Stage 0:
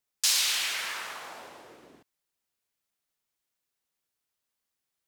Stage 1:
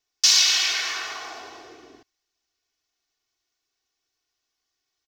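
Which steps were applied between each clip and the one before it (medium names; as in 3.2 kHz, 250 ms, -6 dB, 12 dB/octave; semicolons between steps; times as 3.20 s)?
resonant high shelf 7.4 kHz -9.5 dB, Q 3; comb 2.7 ms, depth 91%; trim +2.5 dB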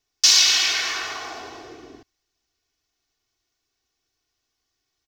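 bass shelf 280 Hz +9.5 dB; trim +2 dB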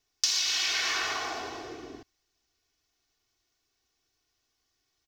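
compression 12:1, threshold -24 dBFS, peak gain reduction 14 dB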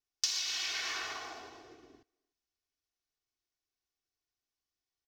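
speakerphone echo 300 ms, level -27 dB; upward expansion 1.5:1, over -45 dBFS; trim -4.5 dB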